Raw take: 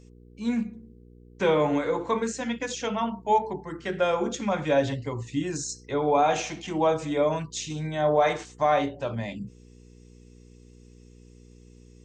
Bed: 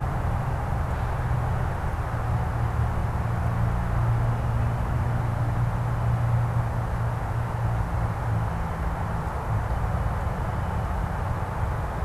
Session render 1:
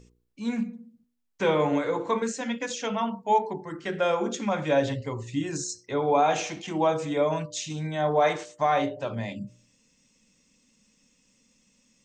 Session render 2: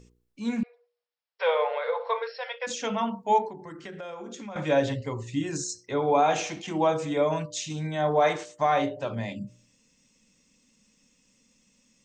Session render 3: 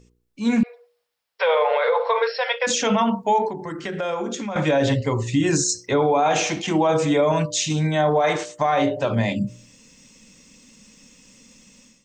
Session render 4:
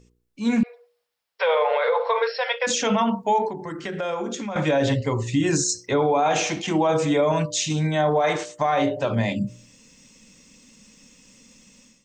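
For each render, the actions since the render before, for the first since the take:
hum removal 60 Hz, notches 10
0:00.63–0:02.67: linear-phase brick-wall band-pass 440–5,600 Hz; 0:03.48–0:04.56: downward compressor 4 to 1, threshold −38 dBFS
automatic gain control gain up to 14.5 dB; brickwall limiter −11 dBFS, peak gain reduction 9.5 dB
level −1.5 dB

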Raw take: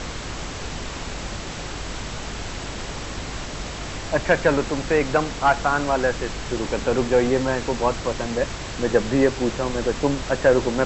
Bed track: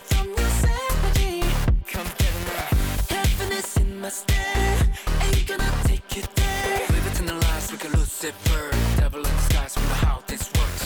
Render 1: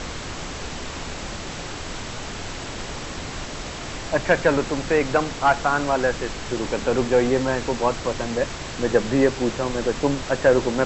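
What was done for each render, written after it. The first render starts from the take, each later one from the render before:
hum removal 50 Hz, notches 4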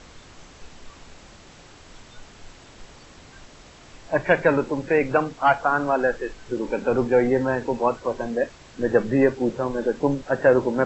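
noise reduction from a noise print 15 dB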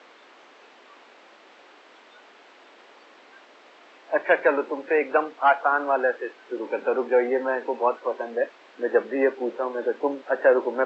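high-pass filter 240 Hz 24 dB per octave
three-way crossover with the lows and the highs turned down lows −16 dB, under 320 Hz, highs −20 dB, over 3,700 Hz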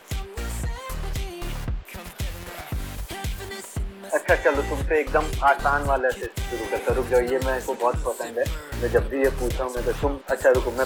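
mix in bed track −9 dB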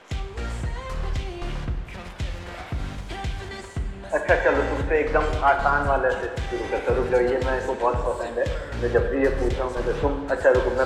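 high-frequency loss of the air 94 metres
dense smooth reverb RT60 1.6 s, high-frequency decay 0.75×, DRR 5.5 dB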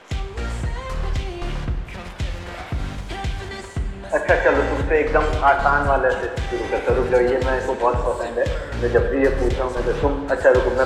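level +3.5 dB
brickwall limiter −3 dBFS, peak gain reduction 2 dB

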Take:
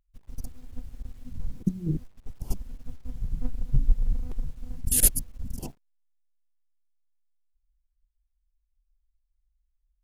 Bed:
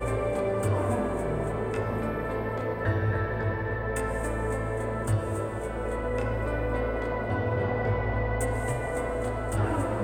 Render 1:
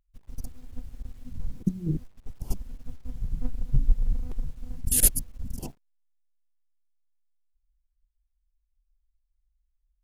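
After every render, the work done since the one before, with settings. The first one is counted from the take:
no processing that can be heard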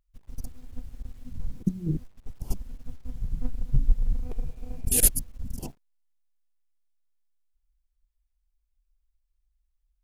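0:04.24–0:04.99: hollow resonant body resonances 450/660/2,400 Hz, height 9 dB → 14 dB, ringing for 25 ms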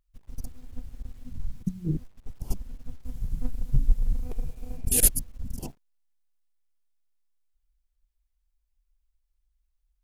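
0:01.38–0:01.85: parametric band 380 Hz −13 dB 1.3 octaves
0:03.01–0:04.77: parametric band 13,000 Hz +7 dB 1.6 octaves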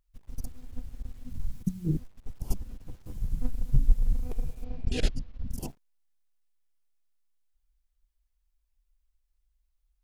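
0:01.29–0:01.98: high-shelf EQ 8,100 Hz → 4,900 Hz +6 dB
0:02.61–0:03.18: lower of the sound and its delayed copy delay 9.8 ms
0:04.64–0:05.51: low-pass filter 4,500 Hz 24 dB per octave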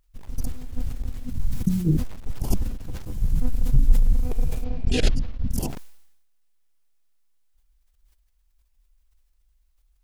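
in parallel at +3 dB: brickwall limiter −20 dBFS, peak gain reduction 10.5 dB
on the sum: level that may fall only so fast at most 59 dB per second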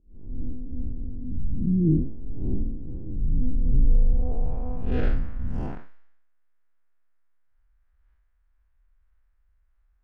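spectrum smeared in time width 126 ms
low-pass filter sweep 330 Hz → 1,600 Hz, 0:03.55–0:05.20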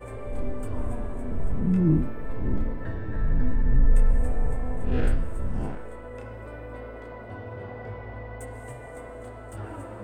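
mix in bed −10.5 dB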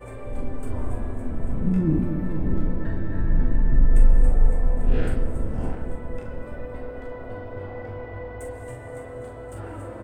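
double-tracking delay 42 ms −6.5 dB
bucket-brigade delay 232 ms, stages 1,024, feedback 78%, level −7.5 dB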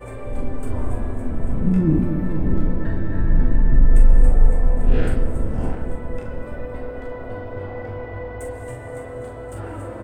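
level +4 dB
brickwall limiter −3 dBFS, peak gain reduction 2.5 dB

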